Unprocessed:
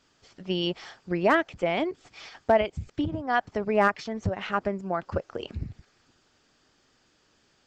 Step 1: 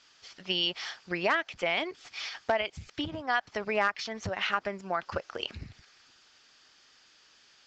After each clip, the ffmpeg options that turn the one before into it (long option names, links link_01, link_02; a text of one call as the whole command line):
ffmpeg -i in.wav -af "tiltshelf=frequency=820:gain=-9.5,acompressor=threshold=-26dB:ratio=2.5,lowpass=frequency=6400:width=0.5412,lowpass=frequency=6400:width=1.3066" out.wav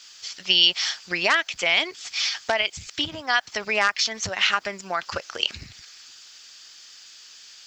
ffmpeg -i in.wav -af "crystalizer=i=8.5:c=0" out.wav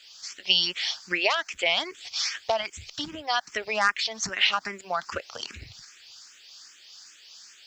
ffmpeg -i in.wav -filter_complex "[0:a]asplit=2[link_01][link_02];[link_02]afreqshift=2.5[link_03];[link_01][link_03]amix=inputs=2:normalize=1" out.wav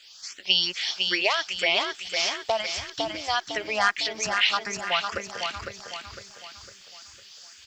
ffmpeg -i in.wav -af "aecho=1:1:505|1010|1515|2020|2525:0.562|0.242|0.104|0.0447|0.0192" out.wav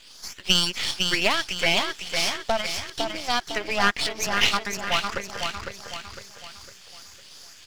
ffmpeg -i in.wav -af "aeval=exprs='if(lt(val(0),0),0.251*val(0),val(0))':channel_layout=same,volume=4.5dB" out.wav